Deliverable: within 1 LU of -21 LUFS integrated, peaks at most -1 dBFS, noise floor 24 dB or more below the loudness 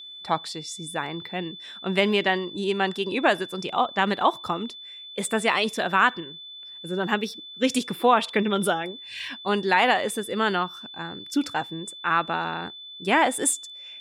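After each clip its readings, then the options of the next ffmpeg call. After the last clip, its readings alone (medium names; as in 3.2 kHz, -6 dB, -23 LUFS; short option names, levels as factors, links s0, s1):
steady tone 3.5 kHz; tone level -39 dBFS; loudness -25.0 LUFS; peak level -6.5 dBFS; loudness target -21.0 LUFS
-> -af "bandreject=f=3500:w=30"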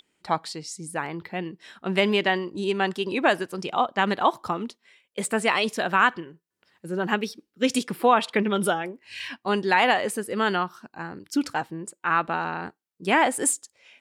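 steady tone not found; loudness -25.0 LUFS; peak level -7.0 dBFS; loudness target -21.0 LUFS
-> -af "volume=1.58"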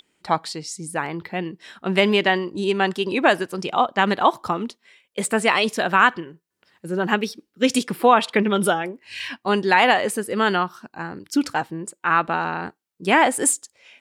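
loudness -21.0 LUFS; peak level -3.0 dBFS; noise floor -75 dBFS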